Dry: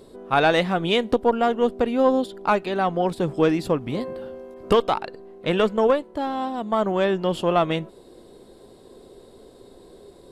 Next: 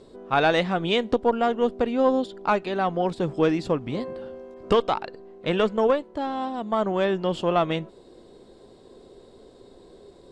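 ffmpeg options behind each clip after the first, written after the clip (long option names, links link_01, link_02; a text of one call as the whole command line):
ffmpeg -i in.wav -af "lowpass=frequency=7900:width=0.5412,lowpass=frequency=7900:width=1.3066,volume=-2dB" out.wav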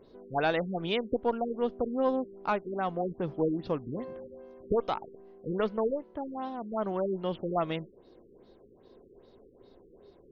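ffmpeg -i in.wav -af "afftfilt=real='re*lt(b*sr/1024,470*pow(6800/470,0.5+0.5*sin(2*PI*2.5*pts/sr)))':imag='im*lt(b*sr/1024,470*pow(6800/470,0.5+0.5*sin(2*PI*2.5*pts/sr)))':win_size=1024:overlap=0.75,volume=-7dB" out.wav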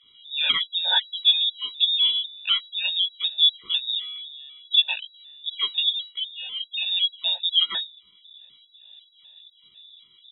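ffmpeg -i in.wav -filter_complex "[0:a]asplit=2[link_01][link_02];[link_02]adelay=17,volume=-2.5dB[link_03];[link_01][link_03]amix=inputs=2:normalize=0,lowpass=frequency=3300:width_type=q:width=0.5098,lowpass=frequency=3300:width_type=q:width=0.6013,lowpass=frequency=3300:width_type=q:width=0.9,lowpass=frequency=3300:width_type=q:width=2.563,afreqshift=-3900,afftfilt=real='re*gt(sin(2*PI*2*pts/sr)*(1-2*mod(floor(b*sr/1024/480),2)),0)':imag='im*gt(sin(2*PI*2*pts/sr)*(1-2*mod(floor(b*sr/1024/480),2)),0)':win_size=1024:overlap=0.75,volume=7.5dB" out.wav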